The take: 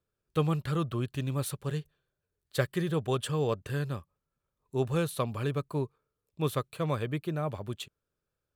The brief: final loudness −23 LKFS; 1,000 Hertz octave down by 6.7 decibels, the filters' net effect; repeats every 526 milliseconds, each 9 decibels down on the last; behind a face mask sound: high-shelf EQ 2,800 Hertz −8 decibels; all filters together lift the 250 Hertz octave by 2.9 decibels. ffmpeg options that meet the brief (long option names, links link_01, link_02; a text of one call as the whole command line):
ffmpeg -i in.wav -af "equalizer=frequency=250:width_type=o:gain=5.5,equalizer=frequency=1000:width_type=o:gain=-7.5,highshelf=frequency=2800:gain=-8,aecho=1:1:526|1052|1578|2104:0.355|0.124|0.0435|0.0152,volume=8.5dB" out.wav